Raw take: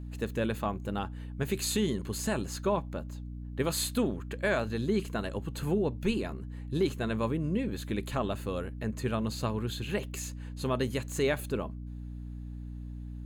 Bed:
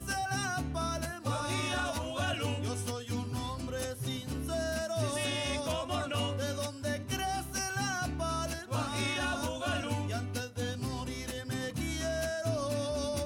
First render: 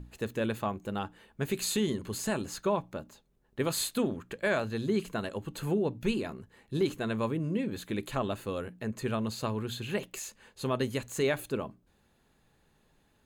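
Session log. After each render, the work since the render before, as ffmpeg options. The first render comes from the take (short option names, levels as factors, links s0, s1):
-af "bandreject=f=60:t=h:w=6,bandreject=f=120:t=h:w=6,bandreject=f=180:t=h:w=6,bandreject=f=240:t=h:w=6,bandreject=f=300:t=h:w=6"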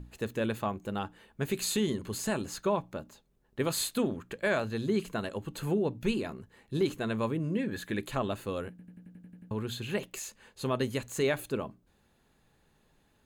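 -filter_complex "[0:a]asettb=1/sr,asplit=3[s0][s1][s2];[s0]atrim=end=7.574[s3];[s1]atrim=start=7.57:end=8.03,asetpts=PTS-STARTPTS,afade=t=in:d=0.004:c=qsin,afade=t=out:st=0.456:d=0.004:c=qsin,equalizer=f=1700:w=7.1:g=12[s4];[s2]atrim=start=8.026[s5];[s3][s4]acrossfade=d=0.004:c1=hsin:c2=qsin[s6];[s6][s5]acrossfade=d=0.004:c1=qsin:c2=hsin,asplit=10[s7][s8][s9][s10][s11][s12][s13][s14][s15][s16];[s7]atrim=end=8.792[s17];[s8]atrim=start=8.698:end=8.792[s18];[s9]atrim=start=8.698:end=8.792[s19];[s10]atrim=start=8.698:end=8.792[s20];[s11]atrim=start=8.698:end=8.792[s21];[s12]atrim=start=8.698:end=8.792[s22];[s13]atrim=start=8.698:end=8.792[s23];[s14]atrim=start=8.698:end=8.792[s24];[s15]atrim=start=8.698:end=8.792[s25];[s16]atrim=start=9.508[s26];[s17][s18]acrossfade=d=0.004:c1=hsin:c2=hsin[s27];[s27][s19]acrossfade=d=0.004:c1=hsin:c2=hsin[s28];[s28][s20]acrossfade=d=0.004:c1=hsin:c2=hsin[s29];[s29][s21]acrossfade=d=0.004:c1=hsin:c2=hsin[s30];[s30][s22]acrossfade=d=0.004:c1=hsin:c2=hsin[s31];[s31][s23]acrossfade=d=0.004:c1=hsin:c2=hsin[s32];[s32][s24]acrossfade=d=0.004:c1=hsin:c2=hsin[s33];[s33][s25]acrossfade=d=0.004:c1=hsin:c2=hsin[s34];[s34][s26]acrossfade=d=0.004:c1=hsin:c2=hsin"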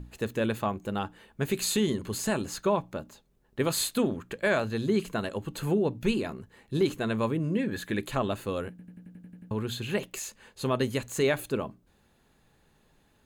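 -af "volume=1.41"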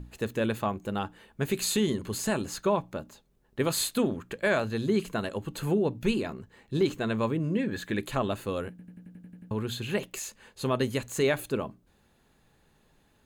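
-filter_complex "[0:a]asettb=1/sr,asplit=3[s0][s1][s2];[s0]atrim=end=6.234[s3];[s1]atrim=start=6.23:end=7.98,asetpts=PTS-STARTPTS,afade=t=in:d=0.004:c=qsin,afade=t=out:st=1.746:d=0.004:c=qsin,equalizer=f=11000:w=2.8:g=-9.5[s4];[s2]atrim=start=7.976[s5];[s3][s4]acrossfade=d=0.004:c1=hsin:c2=qsin[s6];[s6][s5]acrossfade=d=0.004:c1=qsin:c2=hsin"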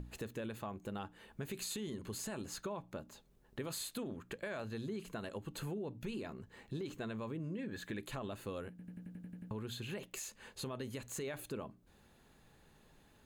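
-af "alimiter=limit=0.0891:level=0:latency=1:release=36,acompressor=threshold=0.00562:ratio=2.5"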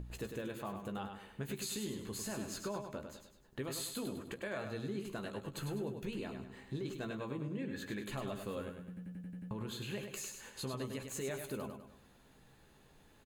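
-filter_complex "[0:a]asplit=2[s0][s1];[s1]adelay=15,volume=0.376[s2];[s0][s2]amix=inputs=2:normalize=0,asplit=2[s3][s4];[s4]aecho=0:1:101|202|303|404|505:0.473|0.199|0.0835|0.0351|0.0147[s5];[s3][s5]amix=inputs=2:normalize=0"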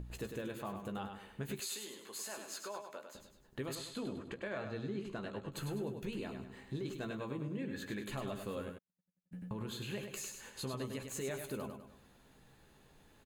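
-filter_complex "[0:a]asettb=1/sr,asplit=3[s0][s1][s2];[s0]atrim=end=1.604[s3];[s1]atrim=start=1.6:end=3.15,asetpts=PTS-STARTPTS,afade=t=in:d=0.004:c=qsin,afade=t=out:st=1.546:d=0.004:c=qsin,highpass=560[s4];[s2]atrim=start=3.146[s5];[s3][s4]acrossfade=d=0.004:c1=hsin:c2=qsin[s6];[s6][s5]acrossfade=d=0.004:c1=qsin:c2=hsin,asettb=1/sr,asplit=3[s7][s8][s9];[s7]atrim=end=3.754[s10];[s8]atrim=start=3.75:end=5.52,asetpts=PTS-STARTPTS,afade=t=in:d=0.004:c=qsin,afade=t=out:st=1.766:d=0.004:c=qsin,adynamicsmooth=sensitivity=2.5:basefreq=5800[s11];[s9]atrim=start=5.516[s12];[s10][s11]acrossfade=d=0.004:c1=hsin:c2=qsin[s13];[s13][s12]acrossfade=d=0.004:c1=qsin:c2=hsin,asplit=3[s14][s15][s16];[s14]afade=t=out:st=8.77:d=0.02[s17];[s15]agate=range=0.00224:threshold=0.00891:ratio=16:release=100:detection=peak,afade=t=in:st=8.77:d=0.02,afade=t=out:st=9.31:d=0.02[s18];[s16]afade=t=in:st=9.31:d=0.02[s19];[s17][s18][s19]amix=inputs=3:normalize=0"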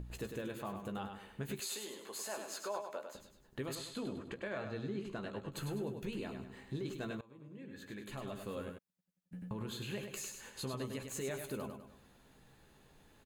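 -filter_complex "[0:a]asettb=1/sr,asplit=3[s0][s1][s2];[s0]atrim=end=1.654[s3];[s1]atrim=start=1.65:end=3.16,asetpts=PTS-STARTPTS,afade=t=in:d=0.004:c=qsin,afade=t=out:st=1.506:d=0.004:c=qsin,equalizer=f=650:w=0.87:g=6[s4];[s2]atrim=start=3.156[s5];[s3][s4]acrossfade=d=0.004:c1=hsin:c2=qsin[s6];[s6][s5]acrossfade=d=0.004:c1=qsin:c2=hsin,asplit=2[s7][s8];[s7]atrim=end=7.21,asetpts=PTS-STARTPTS,afade=t=out:st=7.206:d=0.004:c=hsin:silence=0.0707946[s9];[s8]atrim=start=7.21,asetpts=PTS-STARTPTS,afade=t=in:d=1.54:silence=0.0707946[s10];[s9][s10]concat=n=2:v=0:a=1"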